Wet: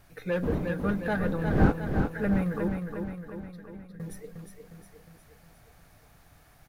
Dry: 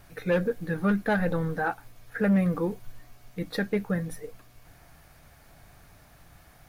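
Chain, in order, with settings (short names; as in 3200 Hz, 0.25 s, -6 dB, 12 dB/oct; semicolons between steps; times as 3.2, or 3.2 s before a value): 0.42–1.71 wind noise 280 Hz -24 dBFS; 2.68–4 passive tone stack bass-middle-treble 10-0-1; on a send: feedback echo 0.358 s, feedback 55%, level -5.5 dB; on the sum: gain -4.5 dB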